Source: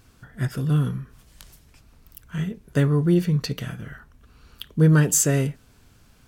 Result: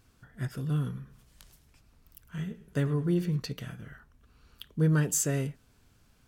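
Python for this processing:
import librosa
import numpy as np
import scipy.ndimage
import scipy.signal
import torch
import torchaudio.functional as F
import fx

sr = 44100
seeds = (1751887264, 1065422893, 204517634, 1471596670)

y = fx.echo_warbled(x, sr, ms=105, feedback_pct=32, rate_hz=2.8, cents=79, wet_db=-15.5, at=(0.85, 3.4))
y = y * librosa.db_to_amplitude(-8.5)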